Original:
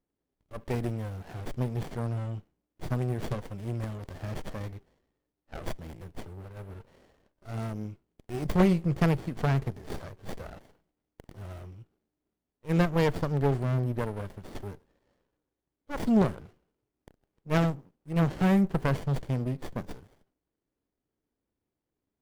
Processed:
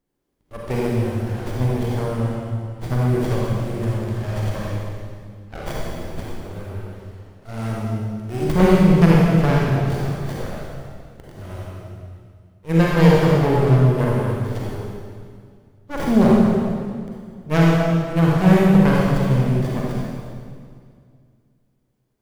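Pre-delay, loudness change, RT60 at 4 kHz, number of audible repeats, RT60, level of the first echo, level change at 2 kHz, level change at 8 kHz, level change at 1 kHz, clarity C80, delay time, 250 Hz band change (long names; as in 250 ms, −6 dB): 35 ms, +11.0 dB, 1.9 s, no echo audible, 2.1 s, no echo audible, +11.0 dB, can't be measured, +11.0 dB, −1.0 dB, no echo audible, +11.5 dB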